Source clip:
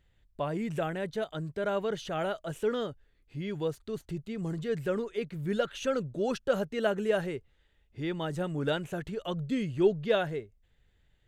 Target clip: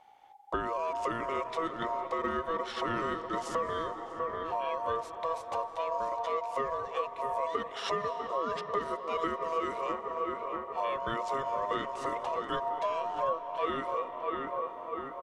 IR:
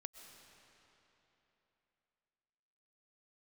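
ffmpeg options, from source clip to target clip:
-filter_complex "[0:a]asplit=2[s0][s1];[s1]adelay=477,lowpass=f=1900:p=1,volume=0.251,asplit=2[s2][s3];[s3]adelay=477,lowpass=f=1900:p=1,volume=0.45,asplit=2[s4][s5];[s5]adelay=477,lowpass=f=1900:p=1,volume=0.45,asplit=2[s6][s7];[s7]adelay=477,lowpass=f=1900:p=1,volume=0.45,asplit=2[s8][s9];[s9]adelay=477,lowpass=f=1900:p=1,volume=0.45[s10];[s0][s2][s4][s6][s8][s10]amix=inputs=6:normalize=0,acompressor=threshold=0.0126:ratio=6,aeval=exprs='val(0)*sin(2*PI*1100*n/s)':c=same,asplit=2[s11][s12];[1:a]atrim=start_sample=2205,asetrate=35721,aresample=44100[s13];[s12][s13]afir=irnorm=-1:irlink=0,volume=1.5[s14];[s11][s14]amix=inputs=2:normalize=0,asetrate=32667,aresample=44100,volume=1.78"

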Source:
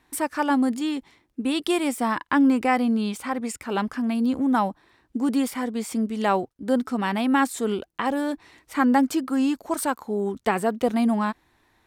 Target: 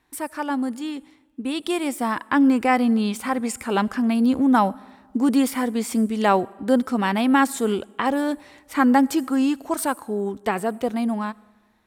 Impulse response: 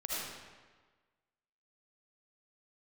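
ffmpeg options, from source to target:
-filter_complex "[0:a]dynaudnorm=f=420:g=11:m=3.76,asplit=2[s0][s1];[s1]highshelf=f=7200:t=q:w=1.5:g=13.5[s2];[1:a]atrim=start_sample=2205[s3];[s2][s3]afir=irnorm=-1:irlink=0,volume=0.0447[s4];[s0][s4]amix=inputs=2:normalize=0,volume=0.631"

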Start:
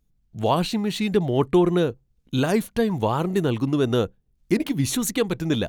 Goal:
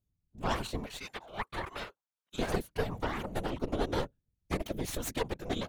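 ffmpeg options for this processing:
-filter_complex "[0:a]asettb=1/sr,asplit=3[s0][s1][s2];[s0]atrim=end=0.864[s3];[s1]atrim=start=0.86:end=2.39,asetpts=PTS-STARTPTS,afade=t=in:d=0.004:c=qsin,afade=t=out:st=1.526:d=0.004:c=qsin,highpass=f=1000:t=q:w=1.9[s4];[s2]atrim=start=2.386[s5];[s3][s4]acrossfade=d=0.004:c1=hsin:c2=qsin[s6];[s6][s5]acrossfade=d=0.004:c1=qsin:c2=hsin,aeval=exprs='0.447*(cos(1*acos(clip(val(0)/0.447,-1,1)))-cos(1*PI/2))+0.158*(cos(6*acos(clip(val(0)/0.447,-1,1)))-cos(6*PI/2))':c=same,afftfilt=real='hypot(re,im)*cos(2*PI*random(0))':imag='hypot(re,im)*sin(2*PI*random(1))':win_size=512:overlap=0.75,volume=0.398"

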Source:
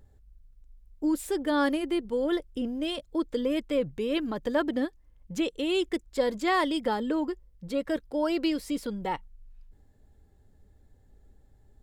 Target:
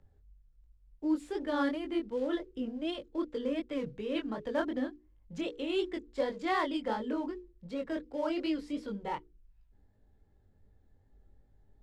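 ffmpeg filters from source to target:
-filter_complex "[0:a]bandreject=f=60:t=h:w=6,bandreject=f=120:t=h:w=6,bandreject=f=180:t=h:w=6,bandreject=f=240:t=h:w=6,bandreject=f=300:t=h:w=6,bandreject=f=360:t=h:w=6,bandreject=f=420:t=h:w=6,bandreject=f=480:t=h:w=6,acrossover=split=140|460|3200[s0][s1][s2][s3];[s2]acrusher=bits=4:mode=log:mix=0:aa=0.000001[s4];[s0][s1][s4][s3]amix=inputs=4:normalize=0,flanger=delay=19:depth=5.6:speed=2.7,adynamicsmooth=sensitivity=2:basefreq=4600,volume=0.794"

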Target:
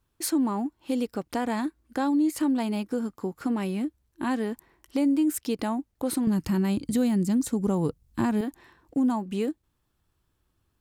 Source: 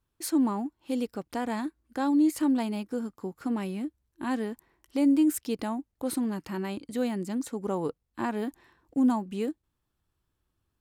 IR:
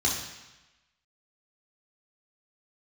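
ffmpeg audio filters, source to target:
-filter_complex "[0:a]asettb=1/sr,asplit=3[s0][s1][s2];[s0]atrim=end=6.274[s3];[s1]atrim=start=6.27:end=8.41,asetpts=PTS-STARTPTS,afade=t=in:d=0.004:c=qsin,afade=t=out:st=2.136:d=0.004:c=qsin,bass=f=250:g=14,treble=f=4000:g=7[s4];[s2]atrim=start=8.406[s5];[s3][s4]acrossfade=d=0.004:c1=hsin:c2=qsin[s6];[s6][s5]acrossfade=d=0.004:c1=qsin:c2=hsin,acompressor=threshold=0.0282:ratio=2,volume=1.88"

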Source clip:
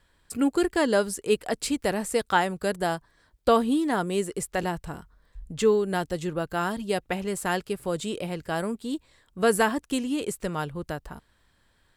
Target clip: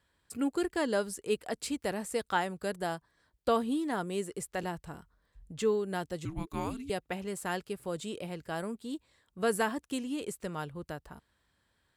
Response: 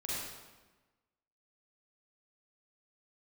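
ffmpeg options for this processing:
-filter_complex "[0:a]highpass=53,asettb=1/sr,asplit=3[s0][s1][s2];[s0]atrim=end=6.254[s3];[s1]atrim=start=6.25:end=6.9,asetpts=PTS-STARTPTS,afade=t=in:d=0.004:c=qsin,afade=t=out:st=0.646:d=0.004:c=qsin,afreqshift=-480[s4];[s2]atrim=start=6.896[s5];[s3][s4]acrossfade=d=0.004:c1=hsin:c2=qsin[s6];[s6][s5]acrossfade=d=0.004:c1=qsin:c2=hsin,volume=0.422"

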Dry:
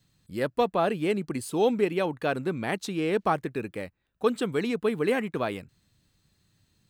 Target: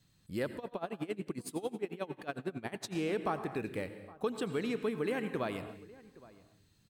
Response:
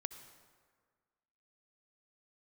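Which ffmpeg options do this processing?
-filter_complex "[0:a]acompressor=threshold=0.0282:ratio=3,asplit=2[s0][s1];[s1]adelay=816.3,volume=0.1,highshelf=f=4000:g=-18.4[s2];[s0][s2]amix=inputs=2:normalize=0[s3];[1:a]atrim=start_sample=2205,afade=t=out:st=0.28:d=0.01,atrim=end_sample=12789,asetrate=35721,aresample=44100[s4];[s3][s4]afir=irnorm=-1:irlink=0,asettb=1/sr,asplit=3[s5][s6][s7];[s5]atrim=end=0.574[s8];[s6]atrim=start=0.57:end=2.95,asetpts=PTS-STARTPTS,afade=t=in:d=0.004:c=qsin,afade=t=out:st=2.376:d=0.004:c=qsin,aeval=exprs='val(0)*pow(10,-21*(0.5-0.5*cos(2*PI*11*n/s))/20)':c=same[s9];[s7]atrim=start=2.946[s10];[s8][s9]acrossfade=d=0.004:c1=hsin:c2=qsin[s11];[s11][s10]acrossfade=d=0.004:c1=qsin:c2=hsin"

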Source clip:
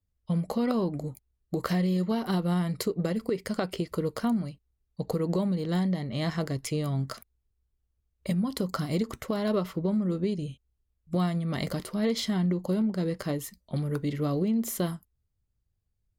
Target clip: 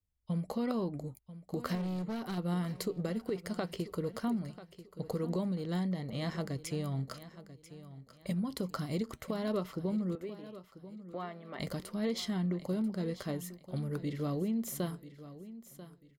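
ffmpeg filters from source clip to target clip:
-filter_complex "[0:a]asettb=1/sr,asplit=3[s0][s1][s2];[s0]atrim=end=1.754[s3];[s1]atrim=start=1.75:end=2.38,asetpts=PTS-STARTPTS,afade=t=in:d=0.004:c=qsin,afade=t=out:st=0.626:d=0.004:c=qsin,asoftclip=type=hard:threshold=0.0422[s4];[s2]atrim=start=2.376[s5];[s3][s4]acrossfade=d=0.004:c1=hsin:c2=qsin[s6];[s6][s5]acrossfade=d=0.004:c1=qsin:c2=hsin,asettb=1/sr,asplit=3[s7][s8][s9];[s7]atrim=end=10.154[s10];[s8]atrim=start=10.15:end=11.6,asetpts=PTS-STARTPTS,afade=t=in:d=0.004:c=qsin,afade=t=out:st=1.446:d=0.004:c=qsin,highpass=430,lowpass=2300[s11];[s9]atrim=start=11.596[s12];[s10][s11]acrossfade=d=0.004:c1=hsin:c2=qsin[s13];[s13][s12]acrossfade=d=0.004:c1=qsin:c2=hsin,aecho=1:1:990|1980|2970:0.178|0.0533|0.016,volume=0.473"

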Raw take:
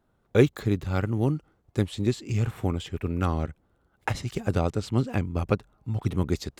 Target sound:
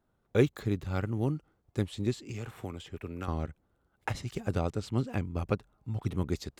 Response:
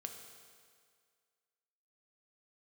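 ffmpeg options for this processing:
-filter_complex "[0:a]asettb=1/sr,asplit=3[s0][s1][s2];[s0]atrim=end=2.234[s3];[s1]atrim=start=2.23:end=3.28,asetpts=PTS-STARTPTS,afade=t=in:d=0.004:c=qsin,afade=t=out:st=1.046:d=0.004:c=qsin,acrossover=split=290|1800[s4][s5][s6];[s4]acompressor=threshold=0.0178:ratio=4[s7];[s5]acompressor=threshold=0.02:ratio=4[s8];[s6]acompressor=threshold=0.00794:ratio=4[s9];[s7][s8][s9]amix=inputs=3:normalize=0[s10];[s2]atrim=start=3.276[s11];[s3][s10]acrossfade=d=0.004:c1=hsin:c2=qsin[s12];[s12][s11]acrossfade=d=0.004:c1=qsin:c2=hsin,volume=0.531"

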